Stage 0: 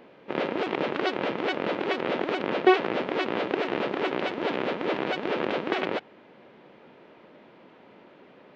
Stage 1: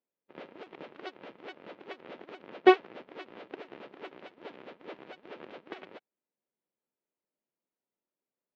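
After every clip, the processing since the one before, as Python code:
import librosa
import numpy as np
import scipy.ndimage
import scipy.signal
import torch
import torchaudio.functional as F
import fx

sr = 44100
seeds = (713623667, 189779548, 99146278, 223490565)

y = fx.upward_expand(x, sr, threshold_db=-44.0, expansion=2.5)
y = y * 10.0 ** (1.5 / 20.0)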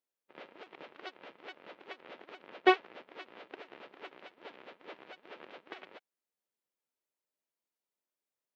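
y = fx.low_shelf(x, sr, hz=460.0, db=-11.0)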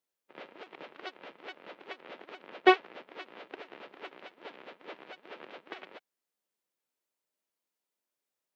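y = scipy.signal.sosfilt(scipy.signal.butter(4, 120.0, 'highpass', fs=sr, output='sos'), x)
y = y * 10.0 ** (3.0 / 20.0)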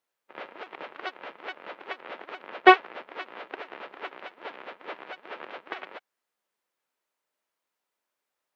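y = fx.peak_eq(x, sr, hz=1200.0, db=9.5, octaves=2.8)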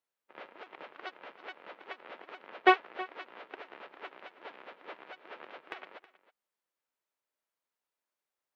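y = fx.rattle_buzz(x, sr, strikes_db=-43.0, level_db=-21.0)
y = y + 10.0 ** (-17.5 / 20.0) * np.pad(y, (int(320 * sr / 1000.0), 0))[:len(y)]
y = y * 10.0 ** (-7.5 / 20.0)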